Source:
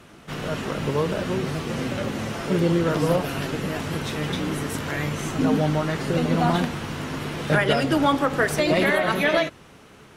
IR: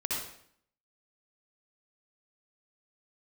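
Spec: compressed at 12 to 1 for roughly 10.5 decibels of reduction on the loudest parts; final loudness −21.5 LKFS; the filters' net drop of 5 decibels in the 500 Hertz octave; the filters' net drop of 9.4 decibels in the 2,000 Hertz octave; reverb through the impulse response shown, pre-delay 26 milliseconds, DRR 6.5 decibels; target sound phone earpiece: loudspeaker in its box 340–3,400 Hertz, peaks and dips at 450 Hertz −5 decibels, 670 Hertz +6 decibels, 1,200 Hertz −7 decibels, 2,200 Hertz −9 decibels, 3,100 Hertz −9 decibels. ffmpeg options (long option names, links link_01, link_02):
-filter_complex "[0:a]equalizer=frequency=500:width_type=o:gain=-7,equalizer=frequency=2000:width_type=o:gain=-6.5,acompressor=threshold=-29dB:ratio=12,asplit=2[link_01][link_02];[1:a]atrim=start_sample=2205,adelay=26[link_03];[link_02][link_03]afir=irnorm=-1:irlink=0,volume=-12dB[link_04];[link_01][link_04]amix=inputs=2:normalize=0,highpass=340,equalizer=frequency=450:width_type=q:width=4:gain=-5,equalizer=frequency=670:width_type=q:width=4:gain=6,equalizer=frequency=1200:width_type=q:width=4:gain=-7,equalizer=frequency=2200:width_type=q:width=4:gain=-9,equalizer=frequency=3100:width_type=q:width=4:gain=-9,lowpass=frequency=3400:width=0.5412,lowpass=frequency=3400:width=1.3066,volume=16dB"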